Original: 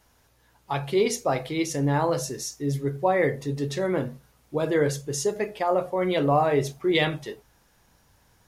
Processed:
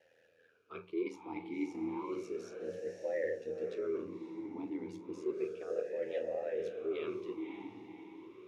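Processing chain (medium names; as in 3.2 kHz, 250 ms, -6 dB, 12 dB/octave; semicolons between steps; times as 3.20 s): reverse; compression 4:1, threshold -39 dBFS, peak gain reduction 18.5 dB; reverse; ring modulator 41 Hz; echo that smears into a reverb 549 ms, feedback 47%, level -5.5 dB; talking filter e-u 0.32 Hz; trim +11.5 dB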